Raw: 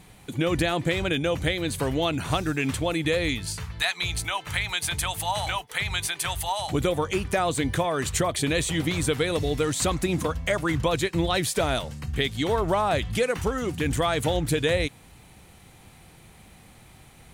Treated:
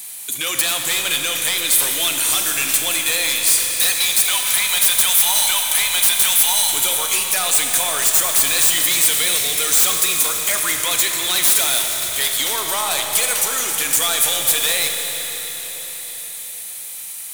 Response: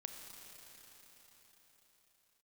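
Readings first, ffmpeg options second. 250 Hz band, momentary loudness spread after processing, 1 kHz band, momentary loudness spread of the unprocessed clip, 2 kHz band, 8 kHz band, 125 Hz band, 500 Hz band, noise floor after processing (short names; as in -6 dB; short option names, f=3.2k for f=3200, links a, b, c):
-10.0 dB, 12 LU, +1.5 dB, 4 LU, +7.0 dB, +19.0 dB, -15.0 dB, -5.5 dB, -31 dBFS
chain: -filter_complex "[0:a]aderivative,asplit=2[a][b];[b]aeval=exprs='0.251*sin(PI/2*10*val(0)/0.251)':c=same,volume=-7.5dB[c];[a][c]amix=inputs=2:normalize=0,crystalizer=i=1:c=0,acrossover=split=620|2600[d][e][f];[d]asoftclip=type=hard:threshold=-36.5dB[g];[g][e][f]amix=inputs=3:normalize=0[h];[1:a]atrim=start_sample=2205[i];[h][i]afir=irnorm=-1:irlink=0,volume=6dB"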